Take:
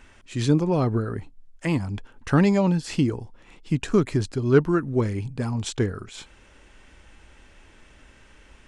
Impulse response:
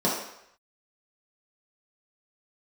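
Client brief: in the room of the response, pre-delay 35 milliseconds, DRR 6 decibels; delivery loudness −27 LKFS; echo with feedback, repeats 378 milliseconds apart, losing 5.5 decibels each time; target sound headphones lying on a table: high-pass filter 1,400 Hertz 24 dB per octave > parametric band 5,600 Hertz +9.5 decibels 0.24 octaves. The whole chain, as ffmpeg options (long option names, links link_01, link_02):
-filter_complex "[0:a]aecho=1:1:378|756|1134|1512|1890|2268|2646:0.531|0.281|0.149|0.079|0.0419|0.0222|0.0118,asplit=2[link_01][link_02];[1:a]atrim=start_sample=2205,adelay=35[link_03];[link_02][link_03]afir=irnorm=-1:irlink=0,volume=-20dB[link_04];[link_01][link_04]amix=inputs=2:normalize=0,highpass=frequency=1400:width=0.5412,highpass=frequency=1400:width=1.3066,equalizer=frequency=5600:width_type=o:width=0.24:gain=9.5,volume=8.5dB"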